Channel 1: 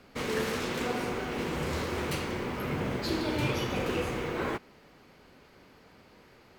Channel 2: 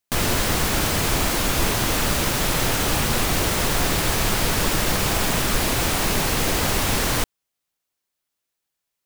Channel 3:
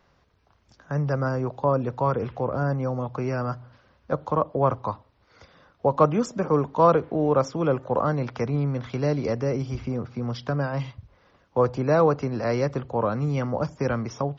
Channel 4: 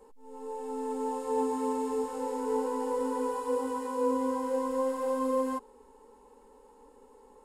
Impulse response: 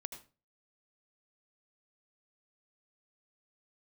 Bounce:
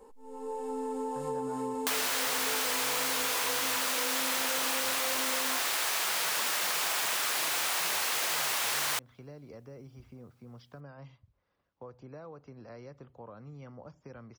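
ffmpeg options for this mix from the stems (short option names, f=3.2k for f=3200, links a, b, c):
-filter_complex "[1:a]highpass=860,adelay=1750,volume=1.5dB[a];[2:a]acompressor=threshold=-23dB:ratio=6,adelay=250,volume=-20dB[b];[3:a]acompressor=threshold=-31dB:ratio=6,volume=1dB,asplit=2[c][d];[d]volume=-23dB[e];[4:a]atrim=start_sample=2205[f];[e][f]afir=irnorm=-1:irlink=0[g];[a][b][c][g]amix=inputs=4:normalize=0,acompressor=threshold=-30dB:ratio=3"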